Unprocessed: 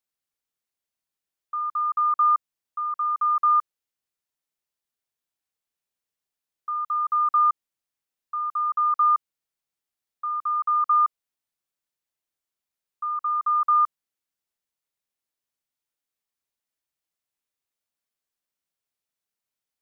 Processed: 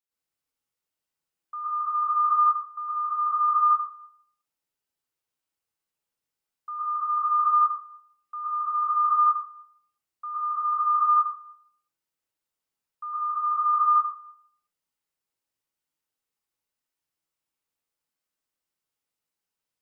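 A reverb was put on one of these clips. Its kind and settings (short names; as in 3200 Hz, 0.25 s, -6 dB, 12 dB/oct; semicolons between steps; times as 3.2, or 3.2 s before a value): plate-style reverb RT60 0.64 s, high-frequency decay 0.6×, pre-delay 0.1 s, DRR -7.5 dB; gain -6.5 dB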